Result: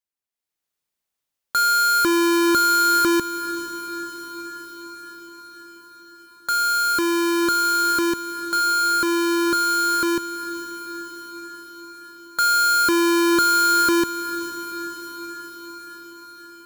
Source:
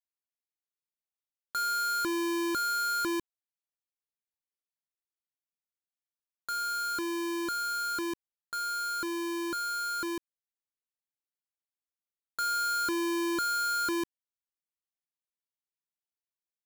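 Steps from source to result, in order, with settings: AGC gain up to 9.5 dB; on a send: diffused feedback echo 0.479 s, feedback 67%, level -13 dB; on the sum: gain +2.5 dB

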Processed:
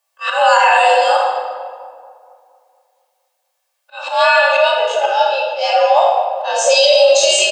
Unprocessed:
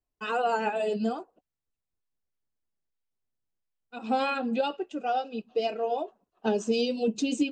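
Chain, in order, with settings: spectral dilation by 60 ms; inverse Chebyshev high-pass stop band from 260 Hz, stop band 40 dB; high shelf 3200 Hz +4 dB; comb 1.9 ms, depth 32%; auto swell 0.199 s; frequency shift +80 Hz; on a send: split-band echo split 1100 Hz, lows 0.232 s, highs 84 ms, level -14 dB; on the sum: shoebox room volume 1900 m³, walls mixed, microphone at 2.5 m; maximiser +15 dB; gain -1 dB

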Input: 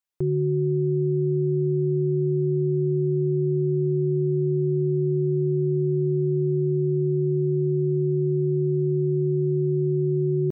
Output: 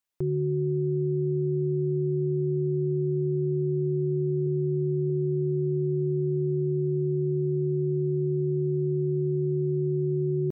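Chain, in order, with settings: 4.46–5.1 notch 410 Hz, Q 12; limiter -22.5 dBFS, peak gain reduction 6 dB; gain +2 dB

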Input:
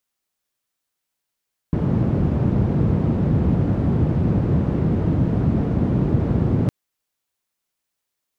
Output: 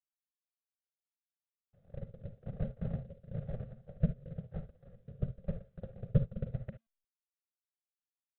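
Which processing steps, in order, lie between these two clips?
notch 2500 Hz, Q 8.9; gate -13 dBFS, range -55 dB; bell 770 Hz +12.5 dB 0.24 oct; fixed phaser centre 810 Hz, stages 8; frequency shift -230 Hz; rotary speaker horn 1 Hz; reverb, pre-delay 33 ms, DRR 9.5 dB; gain +12 dB; IMA ADPCM 32 kbps 8000 Hz

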